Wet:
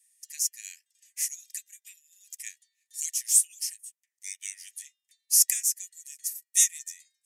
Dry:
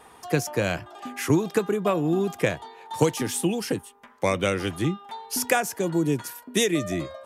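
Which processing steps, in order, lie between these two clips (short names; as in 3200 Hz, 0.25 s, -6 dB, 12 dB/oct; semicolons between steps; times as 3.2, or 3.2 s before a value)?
resonant high shelf 4700 Hz +14 dB, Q 1.5; in parallel at -10 dB: soft clip -22.5 dBFS, distortion -4 dB; on the sum: rippled Chebyshev high-pass 1800 Hz, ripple 3 dB; upward expander 1.5:1, over -52 dBFS; gain -5 dB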